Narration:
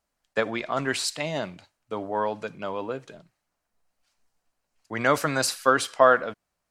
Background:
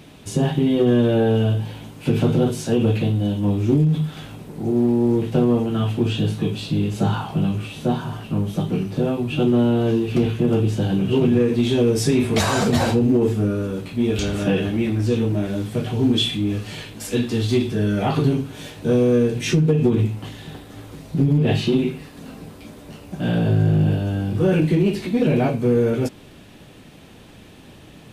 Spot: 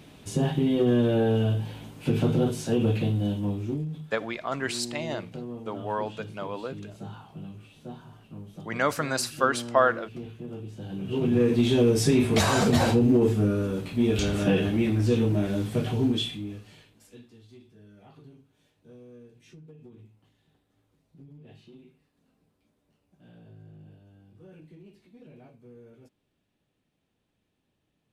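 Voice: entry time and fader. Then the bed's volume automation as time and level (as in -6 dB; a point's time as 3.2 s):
3.75 s, -3.5 dB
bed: 3.31 s -5.5 dB
4.1 s -20 dB
10.73 s -20 dB
11.46 s -3 dB
15.9 s -3 dB
17.41 s -32.5 dB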